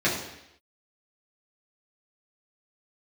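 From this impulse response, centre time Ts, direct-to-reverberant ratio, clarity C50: 42 ms, −7.5 dB, 4.5 dB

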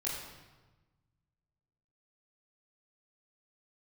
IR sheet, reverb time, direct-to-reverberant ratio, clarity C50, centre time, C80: 1.2 s, −7.5 dB, 2.0 dB, 64 ms, 4.0 dB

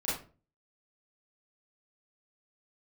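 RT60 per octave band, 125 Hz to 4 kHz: 0.55, 0.45, 0.40, 0.35, 0.30, 0.25 seconds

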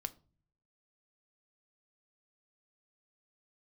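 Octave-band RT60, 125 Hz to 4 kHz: 0.90, 0.70, 0.45, 0.35, 0.25, 0.25 seconds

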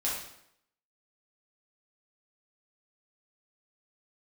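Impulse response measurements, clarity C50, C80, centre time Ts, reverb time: 1.5 dB, 5.5 dB, 52 ms, 0.75 s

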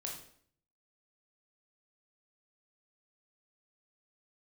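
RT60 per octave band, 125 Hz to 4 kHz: 0.85, 0.70, 0.60, 0.55, 0.55, 0.50 seconds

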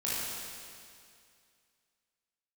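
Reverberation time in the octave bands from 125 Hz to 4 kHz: 2.3, 2.3, 2.3, 2.3, 2.3, 2.3 seconds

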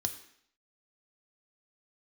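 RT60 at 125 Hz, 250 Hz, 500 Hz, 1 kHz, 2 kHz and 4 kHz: 0.50, 0.70, 0.65, 0.65, 0.70, 0.65 seconds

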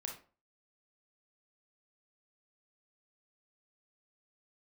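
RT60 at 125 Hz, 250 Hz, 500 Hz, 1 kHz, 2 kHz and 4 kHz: 0.45, 0.40, 0.40, 0.40, 0.30, 0.25 seconds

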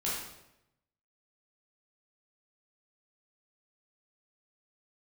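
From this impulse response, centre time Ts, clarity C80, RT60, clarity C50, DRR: 65 ms, 3.5 dB, 0.85 s, 0.0 dB, −7.5 dB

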